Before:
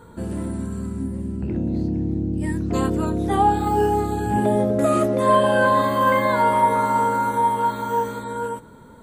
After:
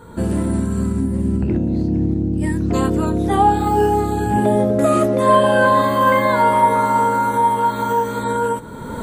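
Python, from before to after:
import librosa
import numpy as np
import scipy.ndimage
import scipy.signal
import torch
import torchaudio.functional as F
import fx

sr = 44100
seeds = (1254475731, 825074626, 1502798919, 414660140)

y = fx.recorder_agc(x, sr, target_db=-14.5, rise_db_per_s=27.0, max_gain_db=30)
y = y * librosa.db_to_amplitude(3.5)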